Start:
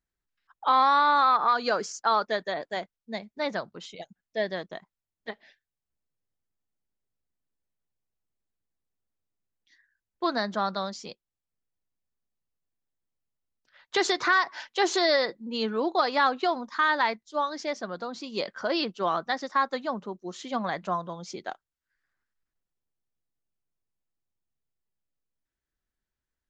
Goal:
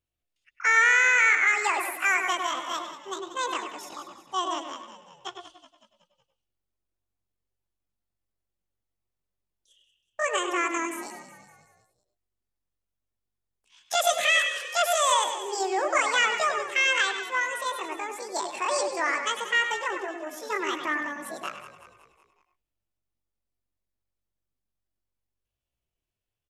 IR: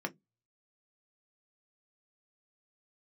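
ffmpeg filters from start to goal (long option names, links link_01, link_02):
-filter_complex "[0:a]asetrate=76340,aresample=44100,atempo=0.577676,asplit=6[link_01][link_02][link_03][link_04][link_05][link_06];[link_02]adelay=186,afreqshift=-47,volume=-12.5dB[link_07];[link_03]adelay=372,afreqshift=-94,volume=-18dB[link_08];[link_04]adelay=558,afreqshift=-141,volume=-23.5dB[link_09];[link_05]adelay=744,afreqshift=-188,volume=-29dB[link_10];[link_06]adelay=930,afreqshift=-235,volume=-34.6dB[link_11];[link_01][link_07][link_08][link_09][link_10][link_11]amix=inputs=6:normalize=0,asplit=2[link_12][link_13];[1:a]atrim=start_sample=2205,asetrate=88200,aresample=44100,adelay=100[link_14];[link_13][link_14]afir=irnorm=-1:irlink=0,volume=-5dB[link_15];[link_12][link_15]amix=inputs=2:normalize=0"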